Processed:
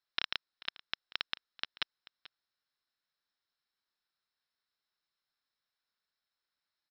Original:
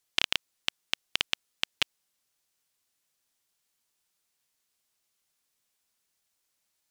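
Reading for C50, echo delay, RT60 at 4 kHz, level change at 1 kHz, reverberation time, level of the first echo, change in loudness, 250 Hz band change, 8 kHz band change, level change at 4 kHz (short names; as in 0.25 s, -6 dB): none, 0.437 s, none, -5.0 dB, none, -19.0 dB, -8.5 dB, -10.5 dB, under -25 dB, -8.5 dB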